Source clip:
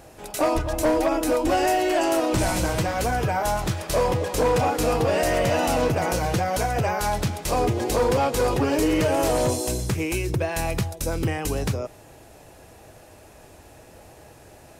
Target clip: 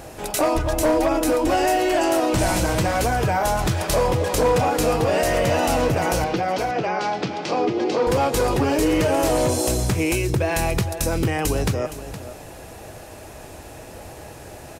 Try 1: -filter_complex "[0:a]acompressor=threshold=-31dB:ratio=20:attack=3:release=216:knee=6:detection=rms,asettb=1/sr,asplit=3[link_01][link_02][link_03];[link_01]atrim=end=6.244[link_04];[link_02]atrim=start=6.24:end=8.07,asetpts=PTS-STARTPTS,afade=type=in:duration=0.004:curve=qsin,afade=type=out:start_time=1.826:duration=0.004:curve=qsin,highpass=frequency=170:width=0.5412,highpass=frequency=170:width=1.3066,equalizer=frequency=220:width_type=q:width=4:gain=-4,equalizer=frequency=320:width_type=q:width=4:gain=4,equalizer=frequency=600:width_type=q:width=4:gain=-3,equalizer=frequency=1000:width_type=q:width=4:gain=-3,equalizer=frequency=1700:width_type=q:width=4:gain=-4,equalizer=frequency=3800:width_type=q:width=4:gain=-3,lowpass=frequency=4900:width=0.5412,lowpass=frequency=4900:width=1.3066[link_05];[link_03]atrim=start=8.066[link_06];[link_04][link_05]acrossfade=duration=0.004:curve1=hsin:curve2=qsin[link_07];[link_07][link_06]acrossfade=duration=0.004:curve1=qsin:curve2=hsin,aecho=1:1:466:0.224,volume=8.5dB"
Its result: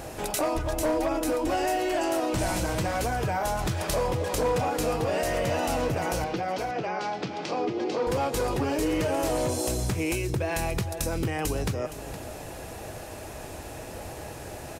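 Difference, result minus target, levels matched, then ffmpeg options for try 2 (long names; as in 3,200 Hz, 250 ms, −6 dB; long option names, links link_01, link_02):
downward compressor: peak gain reduction +7 dB
-filter_complex "[0:a]acompressor=threshold=-23.5dB:ratio=20:attack=3:release=216:knee=6:detection=rms,asettb=1/sr,asplit=3[link_01][link_02][link_03];[link_01]atrim=end=6.244[link_04];[link_02]atrim=start=6.24:end=8.07,asetpts=PTS-STARTPTS,afade=type=in:duration=0.004:curve=qsin,afade=type=out:start_time=1.826:duration=0.004:curve=qsin,highpass=frequency=170:width=0.5412,highpass=frequency=170:width=1.3066,equalizer=frequency=220:width_type=q:width=4:gain=-4,equalizer=frequency=320:width_type=q:width=4:gain=4,equalizer=frequency=600:width_type=q:width=4:gain=-3,equalizer=frequency=1000:width_type=q:width=4:gain=-3,equalizer=frequency=1700:width_type=q:width=4:gain=-4,equalizer=frequency=3800:width_type=q:width=4:gain=-3,lowpass=frequency=4900:width=0.5412,lowpass=frequency=4900:width=1.3066[link_05];[link_03]atrim=start=8.066[link_06];[link_04][link_05]acrossfade=duration=0.004:curve1=hsin:curve2=qsin[link_07];[link_07][link_06]acrossfade=duration=0.004:curve1=qsin:curve2=hsin,aecho=1:1:466:0.224,volume=8.5dB"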